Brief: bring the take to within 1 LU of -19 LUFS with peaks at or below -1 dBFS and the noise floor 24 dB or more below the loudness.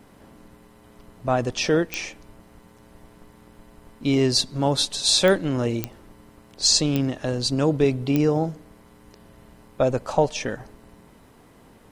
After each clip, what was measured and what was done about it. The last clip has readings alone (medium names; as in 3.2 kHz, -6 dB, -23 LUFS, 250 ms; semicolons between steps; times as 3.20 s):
clicks found 5; loudness -22.5 LUFS; peak level -5.0 dBFS; loudness target -19.0 LUFS
-> de-click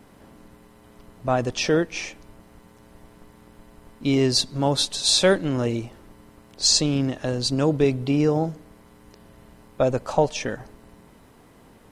clicks found 0; loudness -22.5 LUFS; peak level -5.0 dBFS; loudness target -19.0 LUFS
-> trim +3.5 dB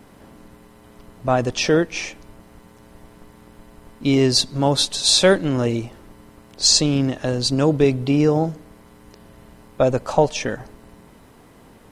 loudness -19.0 LUFS; peak level -1.5 dBFS; noise floor -49 dBFS